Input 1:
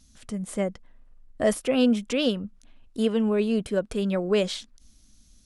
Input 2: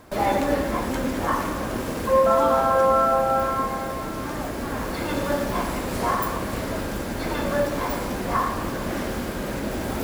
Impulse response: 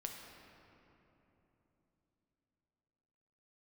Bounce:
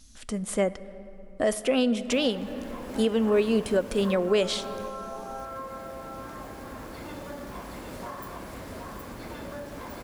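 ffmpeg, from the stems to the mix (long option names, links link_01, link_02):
-filter_complex "[0:a]equalizer=frequency=130:width=1.2:gain=-10,volume=3dB,asplit=2[link_01][link_02];[link_02]volume=-8dB[link_03];[1:a]acompressor=threshold=-23dB:ratio=6,adelay=2000,volume=-12.5dB,asplit=2[link_04][link_05];[link_05]volume=-4dB[link_06];[2:a]atrim=start_sample=2205[link_07];[link_03][link_07]afir=irnorm=-1:irlink=0[link_08];[link_06]aecho=0:1:768:1[link_09];[link_01][link_04][link_08][link_09]amix=inputs=4:normalize=0,alimiter=limit=-14dB:level=0:latency=1:release=325"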